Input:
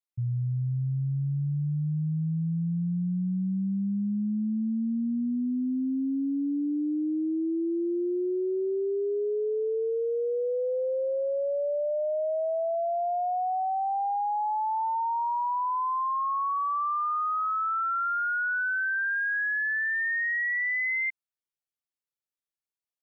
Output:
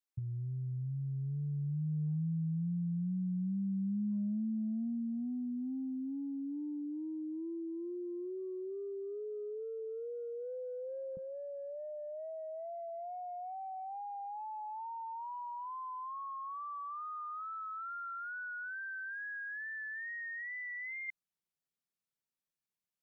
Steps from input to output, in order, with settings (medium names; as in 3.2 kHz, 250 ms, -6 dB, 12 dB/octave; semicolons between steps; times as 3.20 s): peaking EQ 180 Hz -5 dB 0.82 oct, from 11.17 s +11.5 dB; compressor with a negative ratio -32 dBFS, ratio -0.5; vibrato 2.3 Hz 38 cents; trim -6 dB